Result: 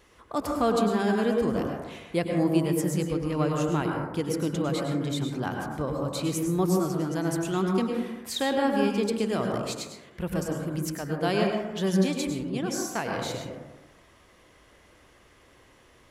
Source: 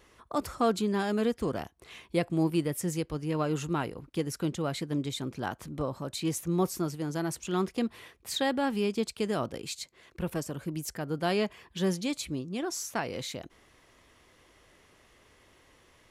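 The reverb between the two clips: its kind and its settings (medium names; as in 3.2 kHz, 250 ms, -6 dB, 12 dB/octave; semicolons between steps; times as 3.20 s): plate-style reverb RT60 1.1 s, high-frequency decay 0.25×, pre-delay 90 ms, DRR 1 dB; trim +1 dB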